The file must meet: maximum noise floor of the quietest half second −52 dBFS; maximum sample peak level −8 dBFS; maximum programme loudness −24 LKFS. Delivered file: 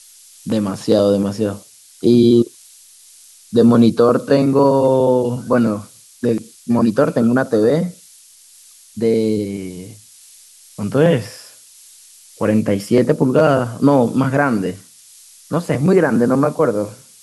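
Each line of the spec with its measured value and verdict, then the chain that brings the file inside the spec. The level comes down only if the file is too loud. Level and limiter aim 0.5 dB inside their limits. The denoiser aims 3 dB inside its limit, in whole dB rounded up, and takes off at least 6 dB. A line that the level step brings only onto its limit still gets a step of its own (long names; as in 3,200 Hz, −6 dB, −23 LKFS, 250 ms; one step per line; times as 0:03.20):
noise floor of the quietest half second −46 dBFS: out of spec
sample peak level −2.0 dBFS: out of spec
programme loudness −16.0 LKFS: out of spec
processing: level −8.5 dB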